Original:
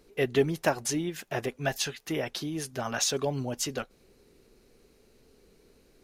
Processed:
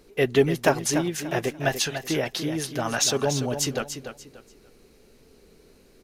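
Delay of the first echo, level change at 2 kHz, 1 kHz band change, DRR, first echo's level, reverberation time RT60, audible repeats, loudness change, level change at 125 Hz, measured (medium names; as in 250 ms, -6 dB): 291 ms, +5.5 dB, +5.5 dB, no reverb, -9.0 dB, no reverb, 3, +5.5 dB, +5.5 dB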